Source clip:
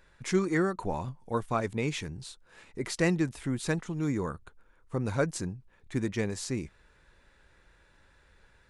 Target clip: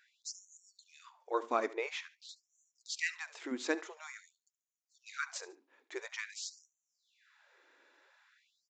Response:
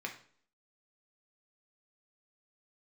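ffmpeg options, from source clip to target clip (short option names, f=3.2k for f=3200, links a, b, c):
-filter_complex "[0:a]asettb=1/sr,asplit=3[a][b][c];[a]atrim=end=1.674[d];[b]atrim=start=1.67:end=2.29,asetpts=PTS-STARTPTS,afade=t=in:d=0.004:c=qsin,afade=t=out:st=0.616:d=0.004:c=qsin,aemphasis=mode=reproduction:type=50fm[e];[c]atrim=start=2.286[f];[d][e]acrossfade=d=0.004:c1=hsin:c2=qsin[g];[g][f]acrossfade=d=0.004:c1=qsin:c2=hsin,aecho=1:1:72|144:0.126|0.0352,asplit=2[h][i];[1:a]atrim=start_sample=2205,atrim=end_sample=6174[j];[i][j]afir=irnorm=-1:irlink=0,volume=-13.5dB[k];[h][k]amix=inputs=2:normalize=0,aresample=16000,aresample=44100,afftfilt=real='re*gte(b*sr/1024,230*pow(5900/230,0.5+0.5*sin(2*PI*0.48*pts/sr)))':imag='im*gte(b*sr/1024,230*pow(5900/230,0.5+0.5*sin(2*PI*0.48*pts/sr)))':win_size=1024:overlap=0.75,volume=-3dB"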